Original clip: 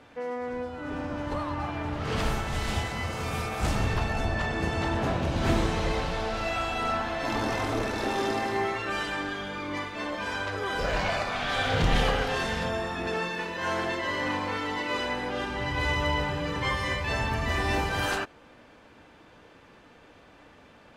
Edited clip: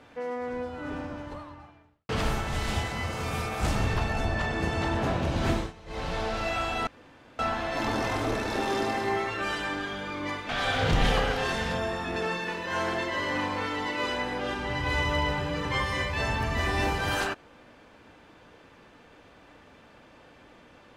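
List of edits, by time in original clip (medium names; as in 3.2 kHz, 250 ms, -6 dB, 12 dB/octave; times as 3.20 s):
0.87–2.09 s: fade out quadratic
5.35–6.24 s: dip -21 dB, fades 0.38 s equal-power
6.87 s: insert room tone 0.52 s
9.97–11.40 s: delete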